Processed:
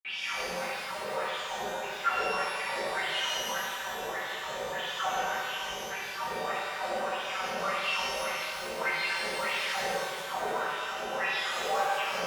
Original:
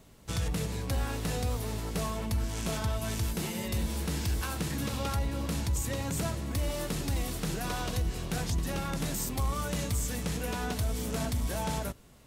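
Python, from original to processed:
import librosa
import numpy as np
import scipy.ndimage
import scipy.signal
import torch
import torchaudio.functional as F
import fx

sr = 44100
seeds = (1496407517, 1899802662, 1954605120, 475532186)

y = np.sign(x) * np.sqrt(np.mean(np.square(x)))
y = fx.high_shelf_res(y, sr, hz=2100.0, db=-8.0, q=3.0)
y = fx.granulator(y, sr, seeds[0], grain_ms=100.0, per_s=20.0, spray_ms=100.0, spread_st=12)
y = fx.wah_lfo(y, sr, hz=1.7, low_hz=450.0, high_hz=3700.0, q=13.0)
y = y + 0.86 * np.pad(y, (int(5.2 * sr / 1000.0), 0))[:len(y)]
y = fx.rev_shimmer(y, sr, seeds[1], rt60_s=1.8, semitones=12, shimmer_db=-8, drr_db=-12.0)
y = y * 10.0 ** (4.0 / 20.0)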